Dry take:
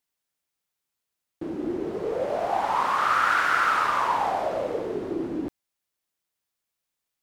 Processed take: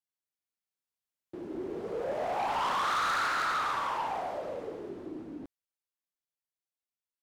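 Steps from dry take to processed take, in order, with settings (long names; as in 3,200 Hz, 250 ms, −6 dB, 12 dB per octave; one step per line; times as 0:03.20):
source passing by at 0:02.83, 20 m/s, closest 12 metres
soft clipping −26.5 dBFS, distortion −8 dB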